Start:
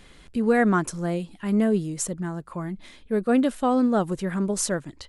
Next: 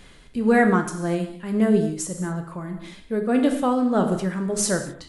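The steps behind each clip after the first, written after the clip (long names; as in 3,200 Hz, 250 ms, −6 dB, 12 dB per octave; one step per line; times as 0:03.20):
reverb whose tail is shaped and stops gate 280 ms falling, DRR 4.5 dB
amplitude tremolo 1.7 Hz, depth 43%
level +2.5 dB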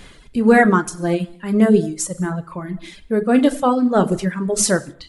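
reverb reduction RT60 1.1 s
level +6.5 dB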